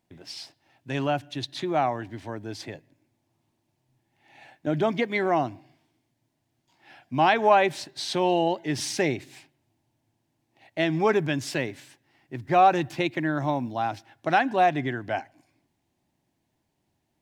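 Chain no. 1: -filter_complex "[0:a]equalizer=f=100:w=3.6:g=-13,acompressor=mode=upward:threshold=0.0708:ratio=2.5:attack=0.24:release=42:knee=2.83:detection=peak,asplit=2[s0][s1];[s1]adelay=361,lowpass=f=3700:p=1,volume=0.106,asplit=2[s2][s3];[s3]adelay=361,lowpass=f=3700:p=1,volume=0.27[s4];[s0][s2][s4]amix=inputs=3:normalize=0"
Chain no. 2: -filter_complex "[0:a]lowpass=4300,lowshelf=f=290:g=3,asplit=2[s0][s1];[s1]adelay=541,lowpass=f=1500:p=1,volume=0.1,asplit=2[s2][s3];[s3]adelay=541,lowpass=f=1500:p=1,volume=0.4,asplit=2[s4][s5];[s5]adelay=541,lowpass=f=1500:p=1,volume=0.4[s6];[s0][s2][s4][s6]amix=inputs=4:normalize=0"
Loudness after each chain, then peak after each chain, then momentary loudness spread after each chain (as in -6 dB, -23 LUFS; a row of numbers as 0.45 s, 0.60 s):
-26.0 LUFS, -25.0 LUFS; -6.5 dBFS, -6.5 dBFS; 20 LU, 20 LU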